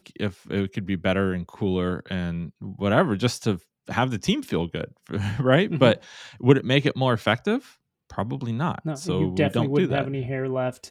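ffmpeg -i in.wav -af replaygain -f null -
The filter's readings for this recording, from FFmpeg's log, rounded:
track_gain = +3.9 dB
track_peak = 0.588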